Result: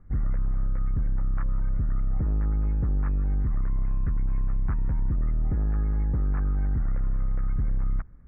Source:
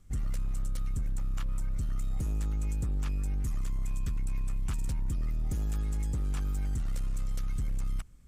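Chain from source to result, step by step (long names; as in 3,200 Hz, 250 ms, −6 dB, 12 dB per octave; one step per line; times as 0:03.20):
Butterworth low-pass 1,900 Hz 48 dB per octave
level +6 dB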